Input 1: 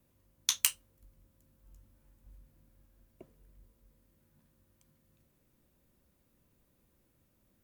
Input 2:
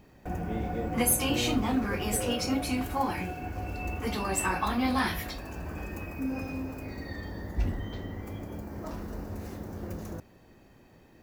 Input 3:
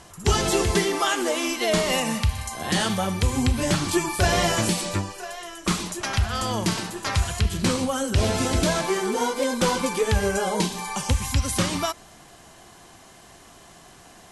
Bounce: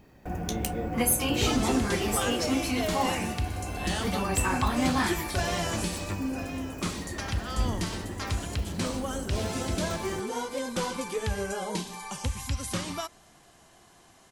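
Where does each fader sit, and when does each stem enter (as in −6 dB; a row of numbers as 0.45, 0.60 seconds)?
−8.0, +0.5, −8.5 decibels; 0.00, 0.00, 1.15 seconds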